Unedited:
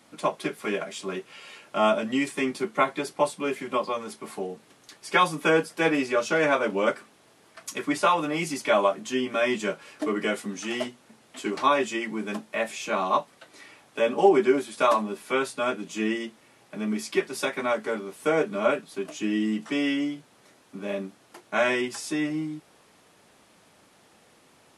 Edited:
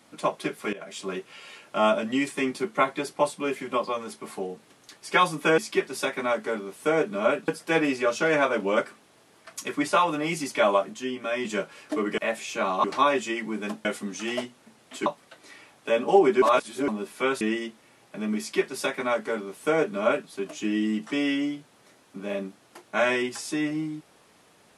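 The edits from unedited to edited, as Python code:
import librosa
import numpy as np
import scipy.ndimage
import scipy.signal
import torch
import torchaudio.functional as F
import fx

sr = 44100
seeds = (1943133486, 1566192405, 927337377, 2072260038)

y = fx.edit(x, sr, fx.fade_in_from(start_s=0.73, length_s=0.26, floor_db=-18.5),
    fx.clip_gain(start_s=9.04, length_s=0.51, db=-4.5),
    fx.swap(start_s=10.28, length_s=1.21, other_s=12.5, other_length_s=0.66),
    fx.reverse_span(start_s=14.52, length_s=0.46),
    fx.cut(start_s=15.51, length_s=0.49),
    fx.duplicate(start_s=16.98, length_s=1.9, to_s=5.58), tone=tone)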